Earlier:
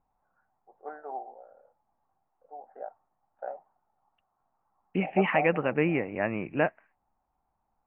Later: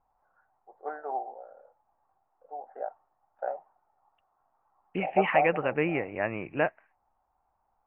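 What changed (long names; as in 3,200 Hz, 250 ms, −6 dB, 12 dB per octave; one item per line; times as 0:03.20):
first voice +5.0 dB
master: add parametric band 210 Hz −6 dB 1.1 octaves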